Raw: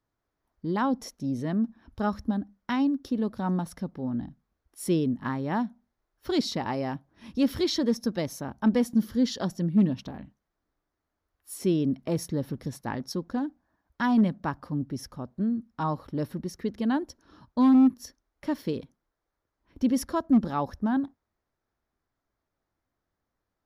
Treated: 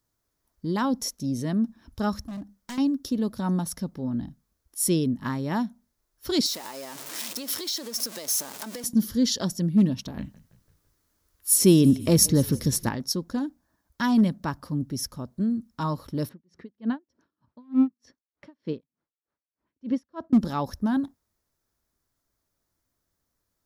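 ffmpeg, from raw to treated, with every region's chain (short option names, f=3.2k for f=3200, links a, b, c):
-filter_complex "[0:a]asettb=1/sr,asplit=3[a][b][c];[a]atrim=end=2.244[d];[b]atrim=start=2.24:end=2.78,asetpts=PTS-STARTPTS,afade=t=in:d=0.004:c=qsin,afade=t=out:st=0.536:d=0.004:c=qsin,acompressor=threshold=-32dB:ratio=2.5:attack=3.2:release=140:knee=1:detection=peak,volume=34.5dB,asoftclip=hard,volume=-34.5dB[e];[c]atrim=start=2.776[f];[d][e]acrossfade=d=0.004:c1=hsin:c2=qsin[g];[g][f]acrossfade=d=0.004:c1=qsin:c2=hsin,asettb=1/sr,asplit=3[h][i][j];[h]atrim=end=6.464[k];[i]atrim=start=6.46:end=8.84,asetpts=PTS-STARTPTS,afade=t=in:d=0.004:c=qsin,afade=t=out:st=2.376:d=0.004:c=qsin,aeval=exprs='val(0)+0.5*0.0224*sgn(val(0))':c=same,highpass=460,acompressor=threshold=-34dB:ratio=12:attack=3.2:release=140:knee=1:detection=peak[l];[j]atrim=start=8.836[m];[k][l]acrossfade=d=0.004:c1=hsin:c2=qsin[n];[n][m]acrossfade=d=0.004:c1=qsin:c2=hsin,asettb=1/sr,asplit=3[o][p][q];[o]atrim=end=10.174[r];[p]atrim=start=10.17:end=12.89,asetpts=PTS-STARTPTS,afade=t=in:d=0.004:c=qsin,afade=t=out:st=2.716:d=0.004:c=qsin,equalizer=f=730:t=o:w=0.55:g=-4.5,asplit=5[s][t][u][v][w];[t]adelay=168,afreqshift=-37,volume=-20dB[x];[u]adelay=336,afreqshift=-74,volume=-25.5dB[y];[v]adelay=504,afreqshift=-111,volume=-31dB[z];[w]adelay=672,afreqshift=-148,volume=-36.5dB[aa];[s][x][y][z][aa]amix=inputs=5:normalize=0,atrim=end_sample=119952,acontrast=89[ab];[q]atrim=start=12.886[ac];[r][ab]acrossfade=d=0.004:c1=hsin:c2=qsin[ad];[ad][ac]acrossfade=d=0.004:c1=qsin:c2=hsin,asettb=1/sr,asplit=3[ae][af][ag];[ae]atrim=end=16.294[ah];[af]atrim=start=16.29:end=20.33,asetpts=PTS-STARTPTS,afade=t=in:d=0.004:c=qsin,afade=t=out:st=4.036:d=0.004:c=qsin,highpass=120,lowpass=2.3k,aeval=exprs='val(0)*pow(10,-37*(0.5-0.5*cos(2*PI*3.3*n/s))/20)':c=same[ai];[ag]atrim=start=20.326[aj];[ah][ai]acrossfade=d=0.004:c1=hsin:c2=qsin[ak];[ak][aj]acrossfade=d=0.004:c1=qsin:c2=hsin,bass=f=250:g=3,treble=f=4k:g=14,bandreject=f=770:w=12"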